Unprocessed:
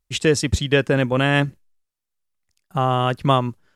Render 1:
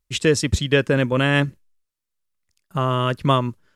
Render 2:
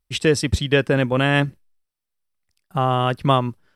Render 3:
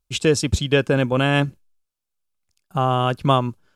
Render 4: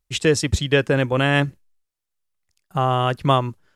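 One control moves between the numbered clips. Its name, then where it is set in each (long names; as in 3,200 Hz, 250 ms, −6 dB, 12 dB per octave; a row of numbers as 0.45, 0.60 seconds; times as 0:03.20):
notch filter, centre frequency: 760, 6,800, 1,900, 230 Hertz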